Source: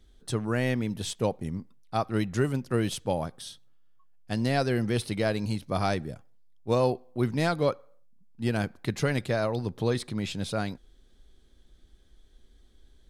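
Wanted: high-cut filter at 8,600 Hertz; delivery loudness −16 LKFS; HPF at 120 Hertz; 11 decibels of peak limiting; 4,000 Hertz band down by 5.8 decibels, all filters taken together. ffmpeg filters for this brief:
ffmpeg -i in.wav -af "highpass=120,lowpass=8600,equalizer=frequency=4000:width_type=o:gain=-7,volume=19.5dB,alimiter=limit=-4dB:level=0:latency=1" out.wav

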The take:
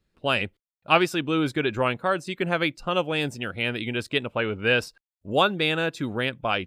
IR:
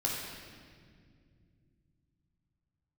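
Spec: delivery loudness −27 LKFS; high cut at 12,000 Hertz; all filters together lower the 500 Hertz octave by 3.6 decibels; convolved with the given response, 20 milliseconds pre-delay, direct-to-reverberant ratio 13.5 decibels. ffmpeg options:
-filter_complex "[0:a]lowpass=12000,equalizer=frequency=500:width_type=o:gain=-4.5,asplit=2[link_01][link_02];[1:a]atrim=start_sample=2205,adelay=20[link_03];[link_02][link_03]afir=irnorm=-1:irlink=0,volume=-19.5dB[link_04];[link_01][link_04]amix=inputs=2:normalize=0,volume=-1dB"

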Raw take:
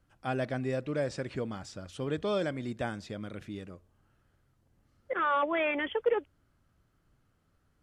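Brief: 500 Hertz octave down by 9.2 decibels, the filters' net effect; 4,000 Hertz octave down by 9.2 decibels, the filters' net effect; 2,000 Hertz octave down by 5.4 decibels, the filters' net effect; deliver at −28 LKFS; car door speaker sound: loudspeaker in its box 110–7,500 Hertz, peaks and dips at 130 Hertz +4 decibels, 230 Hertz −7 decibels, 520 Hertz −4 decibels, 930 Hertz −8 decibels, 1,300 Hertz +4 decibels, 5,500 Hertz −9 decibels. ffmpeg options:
ffmpeg -i in.wav -af "highpass=110,equalizer=frequency=130:width_type=q:width=4:gain=4,equalizer=frequency=230:width_type=q:width=4:gain=-7,equalizer=frequency=520:width_type=q:width=4:gain=-4,equalizer=frequency=930:width_type=q:width=4:gain=-8,equalizer=frequency=1300:width_type=q:width=4:gain=4,equalizer=frequency=5500:width_type=q:width=4:gain=-9,lowpass=frequency=7500:width=0.5412,lowpass=frequency=7500:width=1.3066,equalizer=frequency=500:width_type=o:gain=-8,equalizer=frequency=2000:width_type=o:gain=-5.5,equalizer=frequency=4000:width_type=o:gain=-9,volume=10.5dB" out.wav

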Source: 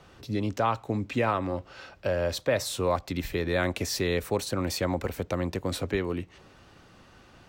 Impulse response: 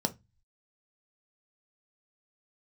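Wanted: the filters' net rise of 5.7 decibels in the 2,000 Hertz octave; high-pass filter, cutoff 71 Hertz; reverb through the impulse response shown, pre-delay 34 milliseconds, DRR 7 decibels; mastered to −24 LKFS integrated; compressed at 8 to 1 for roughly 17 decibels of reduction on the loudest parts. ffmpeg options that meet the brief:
-filter_complex "[0:a]highpass=71,equalizer=frequency=2000:width_type=o:gain=7,acompressor=threshold=-38dB:ratio=8,asplit=2[link_01][link_02];[1:a]atrim=start_sample=2205,adelay=34[link_03];[link_02][link_03]afir=irnorm=-1:irlink=0,volume=-12.5dB[link_04];[link_01][link_04]amix=inputs=2:normalize=0,volume=16dB"

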